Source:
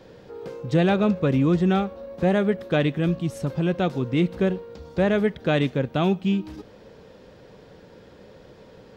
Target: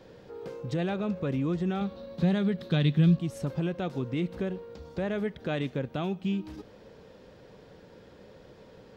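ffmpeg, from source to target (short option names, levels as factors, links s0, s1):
-filter_complex "[0:a]alimiter=limit=0.126:level=0:latency=1:release=161,asettb=1/sr,asplit=3[s0][s1][s2];[s0]atrim=end=1.814[s3];[s1]atrim=start=1.81:end=3.17,asetpts=PTS-STARTPTS,afade=t=in:d=0.004:c=qsin,afade=t=out:st=1.356:d=0.004:c=qsin,equalizer=f=160:t=o:w=0.67:g=12,equalizer=f=630:t=o:w=0.67:g=-3,equalizer=f=4000:t=o:w=0.67:g=12[s4];[s2]atrim=start=3.166[s5];[s3][s4]acrossfade=d=0.004:c1=hsin:c2=qsin[s6];[s6][s5]acrossfade=d=0.004:c1=qsin:c2=hsin,volume=0.631"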